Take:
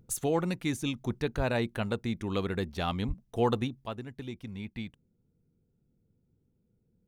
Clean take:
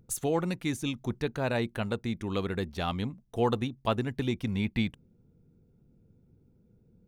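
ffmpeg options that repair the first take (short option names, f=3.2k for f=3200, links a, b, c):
-filter_complex "[0:a]asplit=3[a][b][c];[a]afade=t=out:st=1.36:d=0.02[d];[b]highpass=f=140:w=0.5412,highpass=f=140:w=1.3066,afade=t=in:st=1.36:d=0.02,afade=t=out:st=1.48:d=0.02[e];[c]afade=t=in:st=1.48:d=0.02[f];[d][e][f]amix=inputs=3:normalize=0,asplit=3[g][h][i];[g]afade=t=out:st=3.07:d=0.02[j];[h]highpass=f=140:w=0.5412,highpass=f=140:w=1.3066,afade=t=in:st=3.07:d=0.02,afade=t=out:st=3.19:d=0.02[k];[i]afade=t=in:st=3.19:d=0.02[l];[j][k][l]amix=inputs=3:normalize=0,asetnsamples=n=441:p=0,asendcmd='3.84 volume volume 10dB',volume=0dB"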